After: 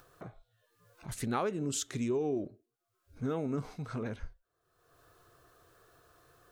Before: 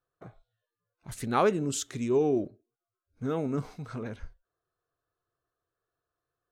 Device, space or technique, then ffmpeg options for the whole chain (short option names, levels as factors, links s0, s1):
upward and downward compression: -af "acompressor=mode=upward:threshold=0.00708:ratio=2.5,acompressor=threshold=0.0355:ratio=6"